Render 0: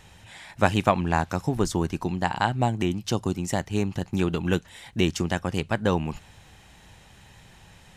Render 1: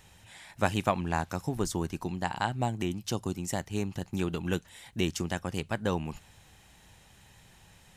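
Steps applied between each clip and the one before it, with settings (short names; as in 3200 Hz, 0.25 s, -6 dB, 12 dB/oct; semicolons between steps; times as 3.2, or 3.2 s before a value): high shelf 7900 Hz +9 dB; gain -6.5 dB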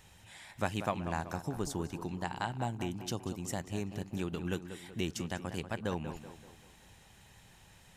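in parallel at 0 dB: compressor, threshold -37 dBFS, peak gain reduction 16 dB; on the sum: tape echo 0.191 s, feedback 51%, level -9 dB, low-pass 2400 Hz; gain -8 dB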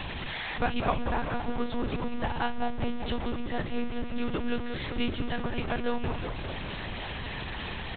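zero-crossing step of -33.5 dBFS; doubler 39 ms -14 dB; monotone LPC vocoder at 8 kHz 240 Hz; gain +4 dB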